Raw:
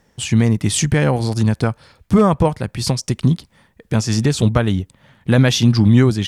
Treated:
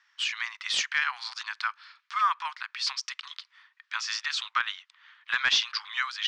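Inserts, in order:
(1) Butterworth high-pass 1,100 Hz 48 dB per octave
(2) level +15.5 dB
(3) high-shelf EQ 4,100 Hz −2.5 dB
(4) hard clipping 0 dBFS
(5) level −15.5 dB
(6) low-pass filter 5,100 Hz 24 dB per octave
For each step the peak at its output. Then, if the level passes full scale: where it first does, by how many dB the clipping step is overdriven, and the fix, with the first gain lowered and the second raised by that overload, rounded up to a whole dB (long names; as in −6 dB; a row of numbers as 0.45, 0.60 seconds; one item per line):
−7.0, +8.5, +8.0, 0.0, −15.5, −14.0 dBFS
step 2, 8.0 dB
step 2 +7.5 dB, step 5 −7.5 dB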